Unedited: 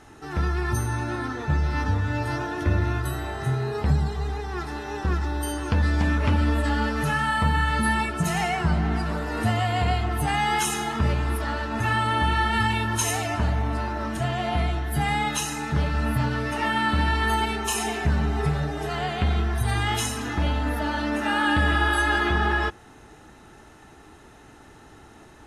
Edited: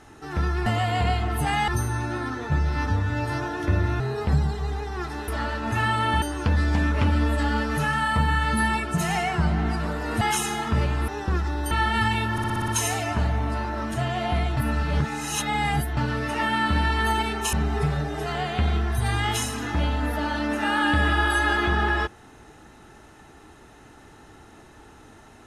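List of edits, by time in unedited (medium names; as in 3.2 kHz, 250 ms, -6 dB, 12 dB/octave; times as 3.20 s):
2.98–3.57 s: delete
4.85–5.48 s: swap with 11.36–12.30 s
9.47–10.49 s: move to 0.66 s
12.91 s: stutter 0.06 s, 7 plays
14.80–16.20 s: reverse
17.76–18.16 s: delete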